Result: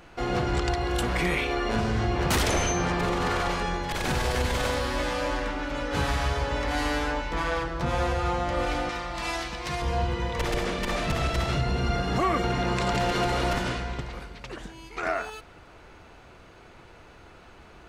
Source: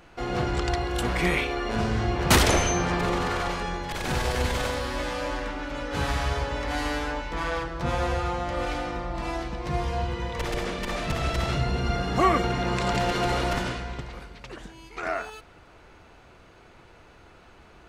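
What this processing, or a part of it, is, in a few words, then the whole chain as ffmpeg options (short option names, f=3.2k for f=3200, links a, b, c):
soft clipper into limiter: -filter_complex "[0:a]asoftclip=type=tanh:threshold=-11dB,alimiter=limit=-18.5dB:level=0:latency=1:release=156,asettb=1/sr,asplit=3[a][b][c];[a]atrim=end=8.894[d];[b]atrim=start=8.89:end=9.82,asetpts=PTS-STARTPTS,afade=t=in:d=0.004:c=qsin,afade=t=out:st=0.926:d=0.004:c=qsin,tiltshelf=f=1.1k:g=-7.5[e];[c]atrim=start=9.816[f];[d][e]acrossfade=d=0.004:c1=hsin:c2=qsin[g];[g][f]acrossfade=d=0.004:c1=qsin:c2=hsin,volume=2dB"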